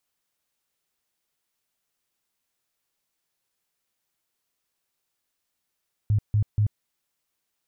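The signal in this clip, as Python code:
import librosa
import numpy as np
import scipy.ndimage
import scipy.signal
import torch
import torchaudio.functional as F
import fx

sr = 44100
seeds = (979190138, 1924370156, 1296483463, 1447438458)

y = fx.tone_burst(sr, hz=105.0, cycles=9, every_s=0.24, bursts=3, level_db=-17.5)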